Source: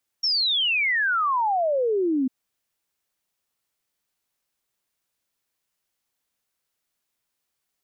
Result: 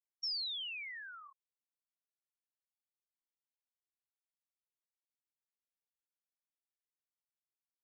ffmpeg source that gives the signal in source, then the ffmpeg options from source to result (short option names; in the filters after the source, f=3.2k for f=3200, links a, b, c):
-f lavfi -i "aevalsrc='0.106*clip(min(t,2.05-t)/0.01,0,1)*sin(2*PI*5600*2.05/log(250/5600)*(exp(log(250/5600)*t/2.05)-1))':d=2.05:s=44100"
-af "alimiter=level_in=6.5dB:limit=-24dB:level=0:latency=1,volume=-6.5dB,aderivative,afftfilt=real='re*gte(hypot(re,im),0.0447)':imag='im*gte(hypot(re,im),0.0447)':win_size=1024:overlap=0.75"